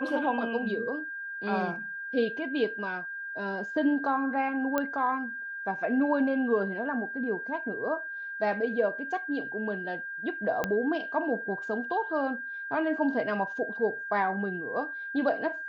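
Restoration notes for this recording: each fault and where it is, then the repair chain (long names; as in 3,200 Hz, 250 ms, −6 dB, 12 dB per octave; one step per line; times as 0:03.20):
whistle 1,600 Hz −35 dBFS
0:04.78: click −14 dBFS
0:10.64: click −14 dBFS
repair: click removal
notch filter 1,600 Hz, Q 30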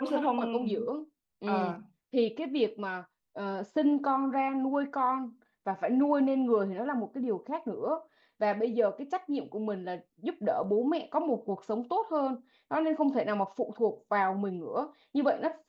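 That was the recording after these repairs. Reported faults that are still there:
0:10.64: click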